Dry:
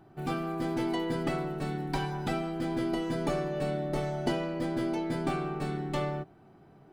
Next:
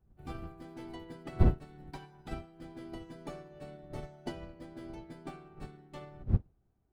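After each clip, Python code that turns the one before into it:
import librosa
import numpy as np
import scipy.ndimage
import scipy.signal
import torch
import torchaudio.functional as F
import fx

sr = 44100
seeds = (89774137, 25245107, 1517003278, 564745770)

y = fx.dmg_wind(x, sr, seeds[0], corner_hz=110.0, level_db=-34.0)
y = fx.upward_expand(y, sr, threshold_db=-37.0, expansion=2.5)
y = F.gain(torch.from_numpy(y), 1.5).numpy()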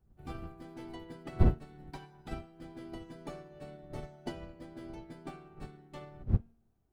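y = fx.comb_fb(x, sr, f0_hz=230.0, decay_s=0.63, harmonics='all', damping=0.0, mix_pct=40)
y = F.gain(torch.from_numpy(y), 4.0).numpy()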